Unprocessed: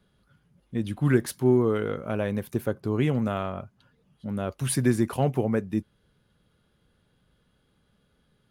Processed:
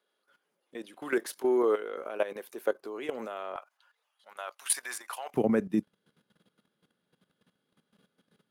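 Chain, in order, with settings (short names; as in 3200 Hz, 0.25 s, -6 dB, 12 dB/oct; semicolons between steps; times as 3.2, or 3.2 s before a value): HPF 380 Hz 24 dB/oct, from 3.56 s 790 Hz, from 5.34 s 170 Hz; level quantiser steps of 14 dB; gain +4 dB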